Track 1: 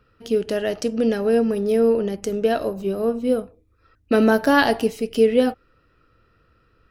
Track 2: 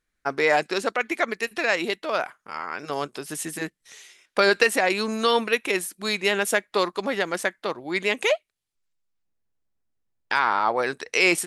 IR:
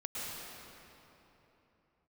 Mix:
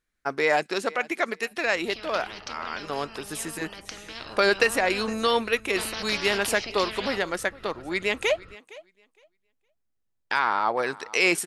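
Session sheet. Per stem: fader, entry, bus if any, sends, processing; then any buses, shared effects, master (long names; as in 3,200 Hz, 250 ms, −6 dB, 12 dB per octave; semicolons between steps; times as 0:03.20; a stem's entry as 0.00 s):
0:04.05 −10 dB → 0:04.68 −3.5 dB, 1.65 s, no send, no echo send, Butterworth low-pass 5,300 Hz; every bin compressed towards the loudest bin 10 to 1
−2.0 dB, 0.00 s, no send, echo send −20.5 dB, no processing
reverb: not used
echo: repeating echo 462 ms, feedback 17%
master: no processing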